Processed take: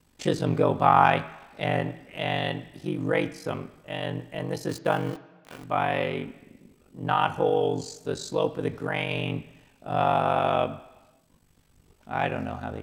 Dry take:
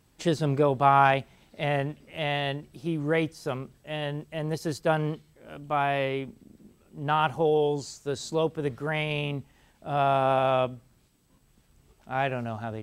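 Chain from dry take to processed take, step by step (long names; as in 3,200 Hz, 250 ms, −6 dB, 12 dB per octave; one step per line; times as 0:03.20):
0:04.69–0:05.64: centre clipping without the shift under −40 dBFS
ring modulation 24 Hz
on a send: convolution reverb RT60 1.2 s, pre-delay 3 ms, DRR 8.5 dB
on the sum: level +3 dB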